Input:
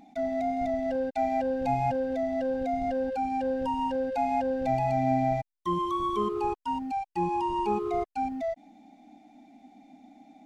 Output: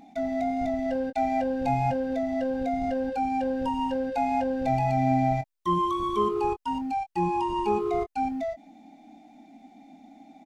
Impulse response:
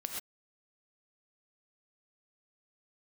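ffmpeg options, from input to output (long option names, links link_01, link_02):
-filter_complex "[0:a]asplit=2[link_01][link_02];[link_02]adelay=22,volume=-9.5dB[link_03];[link_01][link_03]amix=inputs=2:normalize=0,volume=2.5dB"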